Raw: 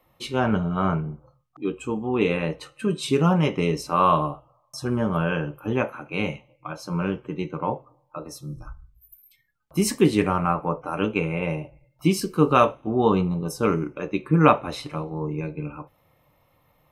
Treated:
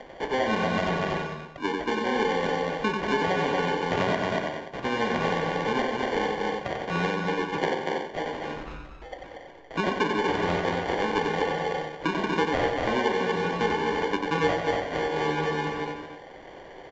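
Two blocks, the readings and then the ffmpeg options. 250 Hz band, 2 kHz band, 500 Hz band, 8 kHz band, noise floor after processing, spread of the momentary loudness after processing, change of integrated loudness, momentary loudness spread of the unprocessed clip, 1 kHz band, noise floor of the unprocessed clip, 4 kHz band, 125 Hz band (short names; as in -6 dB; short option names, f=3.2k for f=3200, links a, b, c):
-6.0 dB, +4.5 dB, -1.0 dB, -9.0 dB, -45 dBFS, 11 LU, -3.0 dB, 17 LU, -1.0 dB, -65 dBFS, +2.5 dB, -9.0 dB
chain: -filter_complex "[0:a]aecho=1:1:4.3:0.53,acompressor=mode=upward:threshold=-37dB:ratio=2.5,aphaser=in_gain=1:out_gain=1:delay=2.5:decay=0.31:speed=1.7:type=triangular,acrusher=samples=34:mix=1:aa=0.000001,acrossover=split=330 3300:gain=0.178 1 0.158[a][b][c];[a][b][c]amix=inputs=3:normalize=0,asplit=2[d][e];[e]aecho=0:1:236:0.501[f];[d][f]amix=inputs=2:normalize=0,acompressor=threshold=-31dB:ratio=5,aresample=16000,aresample=44100,bandreject=f=47.99:t=h:w=4,bandreject=f=95.98:t=h:w=4,bandreject=f=143.97:t=h:w=4,bandreject=f=191.96:t=h:w=4,bandreject=f=239.95:t=h:w=4,bandreject=f=287.94:t=h:w=4,bandreject=f=335.93:t=h:w=4,bandreject=f=383.92:t=h:w=4,bandreject=f=431.91:t=h:w=4,bandreject=f=479.9:t=h:w=4,bandreject=f=527.89:t=h:w=4,bandreject=f=575.88:t=h:w=4,bandreject=f=623.87:t=h:w=4,bandreject=f=671.86:t=h:w=4,bandreject=f=719.85:t=h:w=4,bandreject=f=767.84:t=h:w=4,bandreject=f=815.83:t=h:w=4,bandreject=f=863.82:t=h:w=4,bandreject=f=911.81:t=h:w=4,bandreject=f=959.8:t=h:w=4,bandreject=f=1.00779k:t=h:w=4,bandreject=f=1.05578k:t=h:w=4,bandreject=f=1.10377k:t=h:w=4,bandreject=f=1.15176k:t=h:w=4,bandreject=f=1.19975k:t=h:w=4,bandreject=f=1.24774k:t=h:w=4,bandreject=f=1.29573k:t=h:w=4,bandreject=f=1.34372k:t=h:w=4,bandreject=f=1.39171k:t=h:w=4,bandreject=f=1.4397k:t=h:w=4,bandreject=f=1.48769k:t=h:w=4,bandreject=f=1.53568k:t=h:w=4,bandreject=f=1.58367k:t=h:w=4,bandreject=f=1.63166k:t=h:w=4,bandreject=f=1.67965k:t=h:w=4,bandreject=f=1.72764k:t=h:w=4,bandreject=f=1.77563k:t=h:w=4,bandreject=f=1.82362k:t=h:w=4,bandreject=f=1.87161k:t=h:w=4,asplit=2[g][h];[h]aecho=0:1:92|183|294:0.562|0.188|0.188[i];[g][i]amix=inputs=2:normalize=0,volume=7.5dB"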